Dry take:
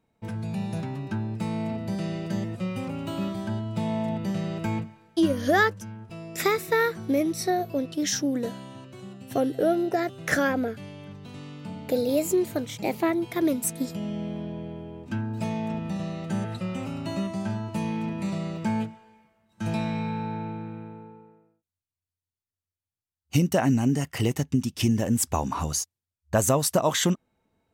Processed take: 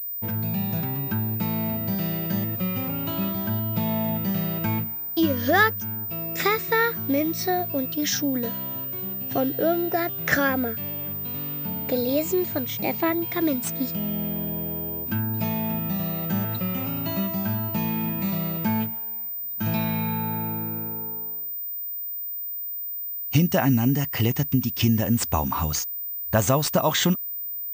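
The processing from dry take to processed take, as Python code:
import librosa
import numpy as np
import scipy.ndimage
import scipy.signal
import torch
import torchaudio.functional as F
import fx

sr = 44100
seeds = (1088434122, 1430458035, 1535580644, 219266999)

y = fx.dynamic_eq(x, sr, hz=430.0, q=0.8, threshold_db=-37.0, ratio=4.0, max_db=-5)
y = fx.pwm(y, sr, carrier_hz=15000.0)
y = y * 10.0 ** (4.0 / 20.0)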